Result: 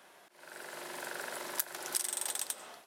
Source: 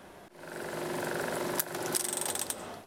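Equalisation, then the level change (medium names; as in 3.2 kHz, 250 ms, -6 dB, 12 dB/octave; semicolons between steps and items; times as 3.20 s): high-pass 1.3 kHz 6 dB/octave; -2.0 dB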